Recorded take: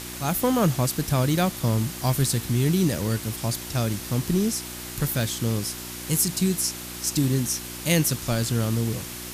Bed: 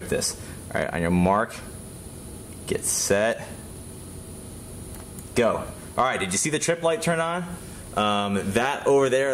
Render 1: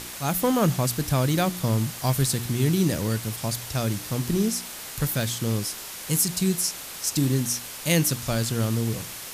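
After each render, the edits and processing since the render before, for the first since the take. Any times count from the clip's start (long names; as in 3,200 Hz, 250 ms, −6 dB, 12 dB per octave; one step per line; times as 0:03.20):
hum removal 60 Hz, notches 6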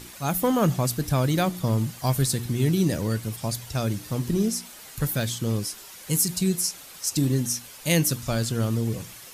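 broadband denoise 9 dB, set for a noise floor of −38 dBFS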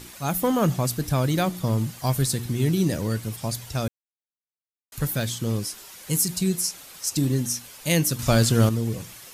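0:03.88–0:04.92: silence
0:08.19–0:08.69: clip gain +7 dB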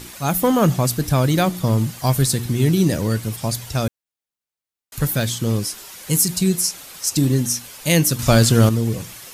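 level +5.5 dB
brickwall limiter −2 dBFS, peak gain reduction 1 dB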